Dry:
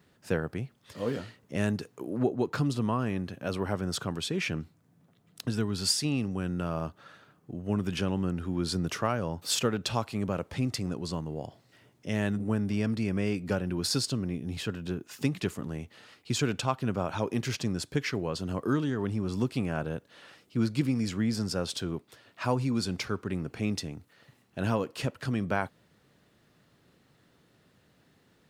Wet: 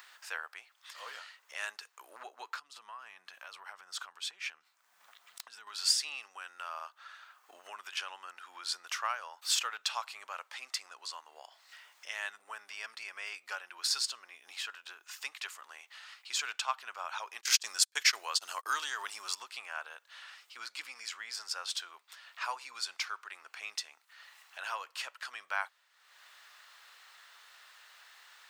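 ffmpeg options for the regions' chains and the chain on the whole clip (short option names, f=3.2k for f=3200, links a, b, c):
-filter_complex "[0:a]asettb=1/sr,asplit=3[a][b][c];[a]atrim=end=2.494[d];[b]atrim=start=2.49:end=5.67,asetpts=PTS-STARTPTS,afade=t=in:d=0.004:c=qsin,afade=t=out:st=3.176:d=0.004:c=qsin,equalizer=f=170:t=o:w=0.98:g=13.5,acompressor=threshold=-30dB:ratio=16:attack=3.2:release=140:knee=1:detection=peak,aeval=exprs='(mod(11.2*val(0)+1,2)-1)/11.2':c=same[e];[c]atrim=start=5.666[f];[d][e]acrossfade=d=0.004:c1=hsin:c2=qsin[g];[g][f]acrossfade=d=0.004:c1=qsin:c2=hsin,asettb=1/sr,asplit=3[h][i][j];[h]atrim=end=17.414[k];[i]atrim=start=17.41:end=19.35,asetpts=PTS-STARTPTS,afade=t=in:d=0.004:c=qsin,afade=t=out:st=1.936:d=0.004:c=qsin,agate=range=-31dB:threshold=-36dB:ratio=16:release=100:detection=peak,bass=f=250:g=2,treble=f=4k:g=11,acontrast=34[l];[j]atrim=start=19.346[m];[k][l]acrossfade=d=0.004:c1=hsin:c2=qsin[n];[n][m]acrossfade=d=0.004:c1=qsin:c2=hsin,highpass=f=990:w=0.5412,highpass=f=990:w=1.3066,equalizer=f=11k:t=o:w=0.31:g=-7.5,acompressor=mode=upward:threshold=-44dB:ratio=2.5"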